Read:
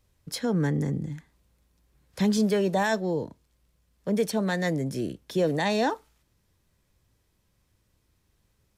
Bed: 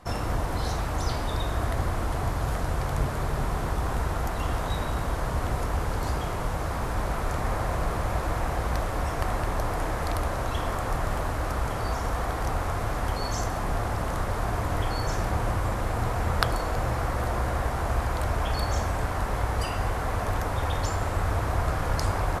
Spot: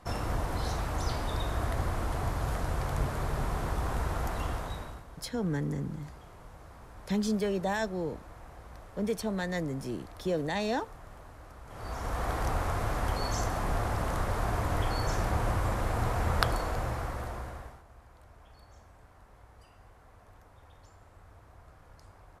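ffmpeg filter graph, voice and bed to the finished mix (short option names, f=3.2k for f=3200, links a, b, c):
-filter_complex "[0:a]adelay=4900,volume=-6dB[a];[1:a]volume=14.5dB,afade=t=out:st=4.36:d=0.68:silence=0.141254,afade=t=in:st=11.66:d=0.66:silence=0.11885,afade=t=out:st=16.41:d=1.42:silence=0.0501187[b];[a][b]amix=inputs=2:normalize=0"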